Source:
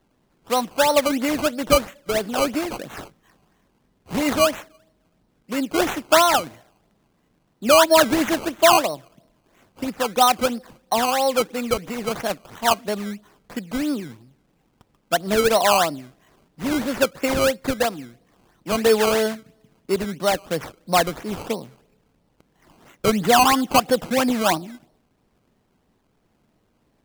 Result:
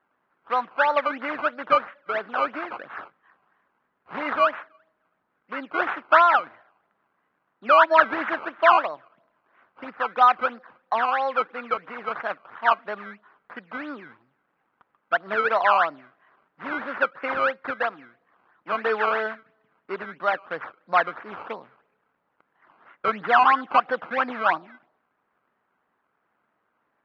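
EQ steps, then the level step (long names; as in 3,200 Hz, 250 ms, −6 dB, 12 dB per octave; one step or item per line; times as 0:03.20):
resonant band-pass 1,400 Hz, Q 2.1
high-frequency loss of the air 310 metres
+7.0 dB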